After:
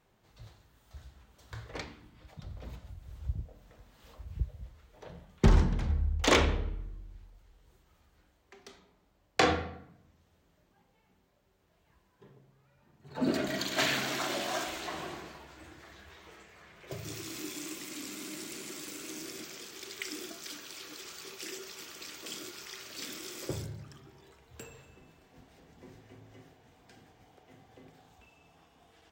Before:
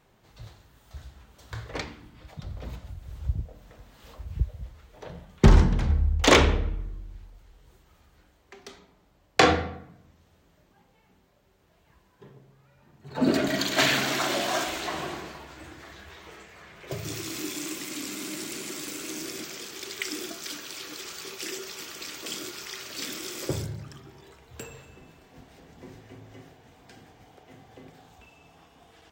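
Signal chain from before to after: de-hum 138 Hz, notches 32; gain -6.5 dB

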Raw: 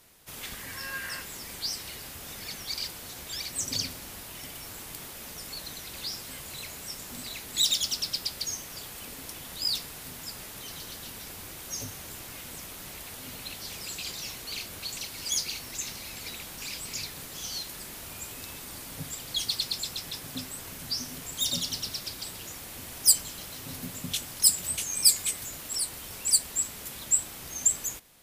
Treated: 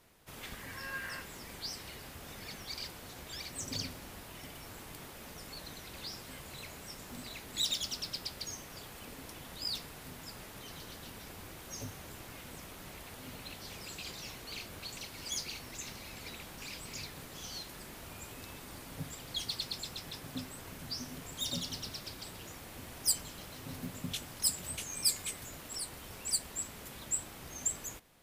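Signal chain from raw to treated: high shelf 3100 Hz -9.5 dB; in parallel at -9 dB: short-mantissa float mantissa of 2-bit; on the sum: gain -4.5 dB

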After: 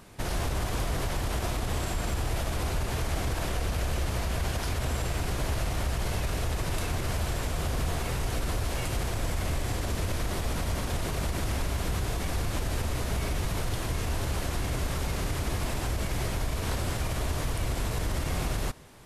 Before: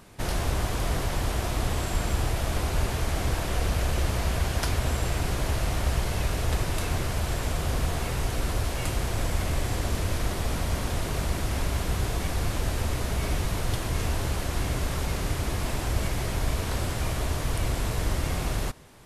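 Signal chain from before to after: limiter -20.5 dBFS, peak gain reduction 8.5 dB

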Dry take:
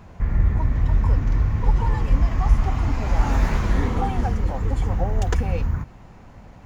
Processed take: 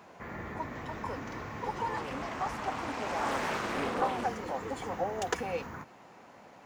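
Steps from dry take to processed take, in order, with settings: HPF 350 Hz 12 dB/oct; 1.96–4.26 Doppler distortion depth 0.57 ms; gain -2 dB

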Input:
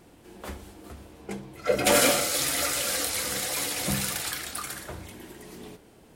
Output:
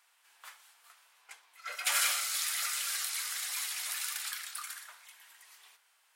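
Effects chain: HPF 1100 Hz 24 dB/oct; gain -6 dB

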